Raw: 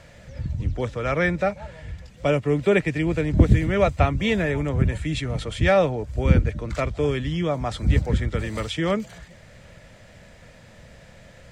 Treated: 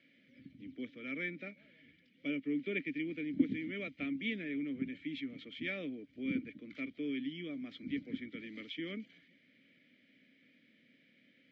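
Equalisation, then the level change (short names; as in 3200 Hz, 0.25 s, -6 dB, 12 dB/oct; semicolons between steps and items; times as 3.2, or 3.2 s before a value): vowel filter i; HPF 200 Hz 12 dB/oct; LPF 5400 Hz 24 dB/oct; -2.5 dB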